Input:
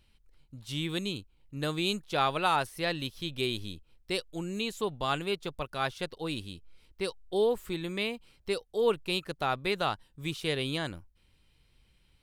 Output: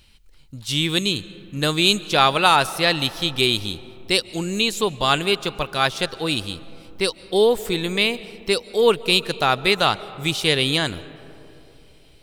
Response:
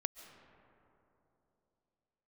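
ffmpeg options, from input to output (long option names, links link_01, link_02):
-filter_complex "[0:a]highshelf=frequency=3000:gain=10,asplit=2[link_01][link_02];[1:a]atrim=start_sample=2205,lowpass=9000[link_03];[link_02][link_03]afir=irnorm=-1:irlink=0,volume=-3dB[link_04];[link_01][link_04]amix=inputs=2:normalize=0,volume=5.5dB"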